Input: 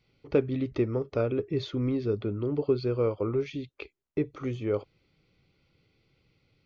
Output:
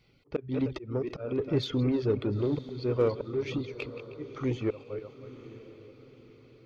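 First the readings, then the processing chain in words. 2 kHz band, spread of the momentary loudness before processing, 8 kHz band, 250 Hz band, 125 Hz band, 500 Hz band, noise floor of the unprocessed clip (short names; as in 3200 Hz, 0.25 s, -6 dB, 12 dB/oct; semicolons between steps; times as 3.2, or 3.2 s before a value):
0.0 dB, 7 LU, n/a, -0.5 dB, -0.5 dB, -2.0 dB, -77 dBFS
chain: regenerating reverse delay 0.156 s, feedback 45%, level -11 dB; auto swell 0.306 s; in parallel at -3 dB: soft clip -33 dBFS, distortion -7 dB; on the sum: reverb removal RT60 0.62 s; diffused feedback echo 0.943 s, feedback 43%, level -15.5 dB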